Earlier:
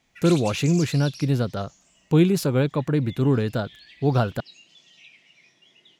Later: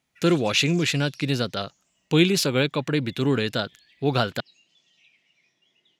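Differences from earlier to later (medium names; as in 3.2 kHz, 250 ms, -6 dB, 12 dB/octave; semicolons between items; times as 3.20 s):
speech: add frequency weighting D; background -9.5 dB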